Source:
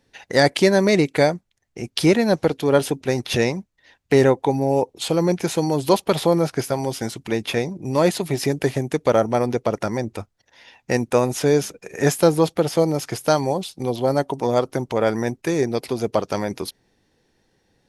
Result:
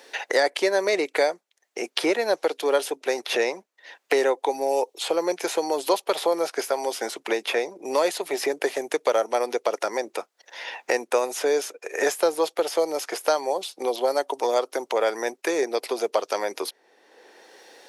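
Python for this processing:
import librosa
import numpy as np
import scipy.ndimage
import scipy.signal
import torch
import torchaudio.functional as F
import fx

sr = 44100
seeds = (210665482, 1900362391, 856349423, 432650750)

y = scipy.signal.sosfilt(scipy.signal.butter(4, 410.0, 'highpass', fs=sr, output='sos'), x)
y = fx.band_squash(y, sr, depth_pct=70)
y = F.gain(torch.from_numpy(y), -2.0).numpy()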